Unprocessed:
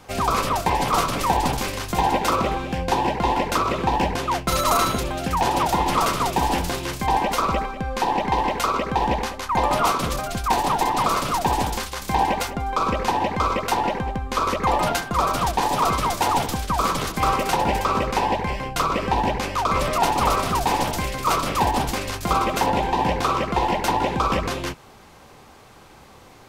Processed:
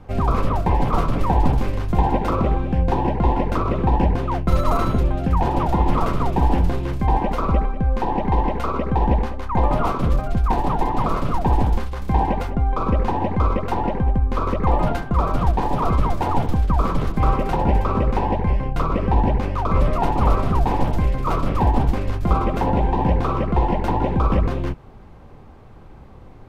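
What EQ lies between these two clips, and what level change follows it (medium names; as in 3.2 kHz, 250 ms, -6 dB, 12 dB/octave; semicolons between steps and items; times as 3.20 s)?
tilt EQ -3.5 dB/octave; peaking EQ 6.6 kHz -5.5 dB 1.6 oct; -3.0 dB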